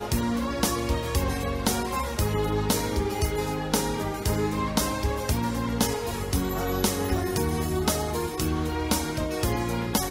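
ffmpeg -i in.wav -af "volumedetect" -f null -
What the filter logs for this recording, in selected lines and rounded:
mean_volume: -26.4 dB
max_volume: -8.8 dB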